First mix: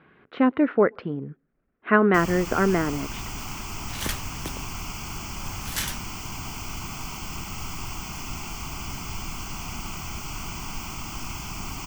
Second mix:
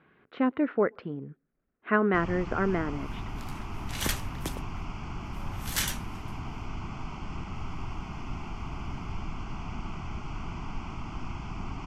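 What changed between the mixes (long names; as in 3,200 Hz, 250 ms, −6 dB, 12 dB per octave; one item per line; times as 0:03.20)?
speech −6.0 dB
first sound: add head-to-tape spacing loss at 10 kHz 34 dB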